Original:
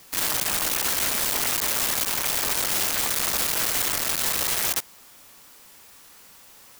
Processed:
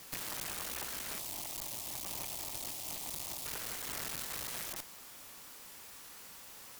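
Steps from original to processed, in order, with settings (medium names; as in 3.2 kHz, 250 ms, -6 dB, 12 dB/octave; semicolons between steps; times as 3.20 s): compressor with a negative ratio -29 dBFS, ratio -0.5; 1.18–3.46 s: static phaser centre 300 Hz, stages 8; valve stage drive 28 dB, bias 0.5; trim -5.5 dB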